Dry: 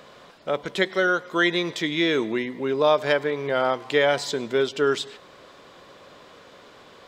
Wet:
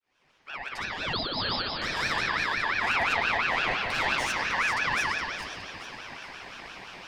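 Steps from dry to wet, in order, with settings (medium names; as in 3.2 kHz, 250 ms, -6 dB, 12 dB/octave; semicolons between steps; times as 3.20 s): fade-in on the opening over 2.25 s; de-hum 137.6 Hz, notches 34; in parallel at 0 dB: compression, threshold -32 dBFS, peak gain reduction 16.5 dB; on the sum: flange 1.4 Hz, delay 5.2 ms, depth 8.3 ms, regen +29%; saturation -26.5 dBFS, distortion -7 dB; on a send: thinning echo 417 ms, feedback 41%, level -8 dB; on the sum: spring tank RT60 2.7 s, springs 59 ms, chirp 60 ms, DRR -4 dB; 1.13–1.82 s: frequency inversion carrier 3.3 kHz; ring modulator with a swept carrier 1.7 kHz, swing 25%, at 5.8 Hz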